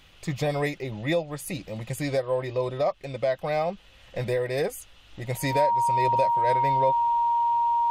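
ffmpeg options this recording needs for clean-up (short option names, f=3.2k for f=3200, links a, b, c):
-af "bandreject=f=940:w=30"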